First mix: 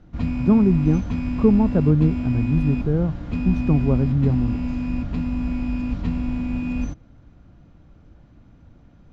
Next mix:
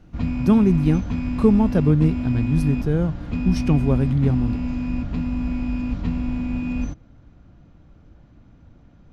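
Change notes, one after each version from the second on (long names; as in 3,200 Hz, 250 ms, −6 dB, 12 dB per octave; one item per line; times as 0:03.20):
speech: remove moving average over 17 samples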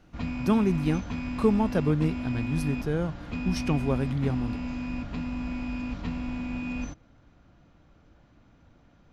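master: add low-shelf EQ 370 Hz −10.5 dB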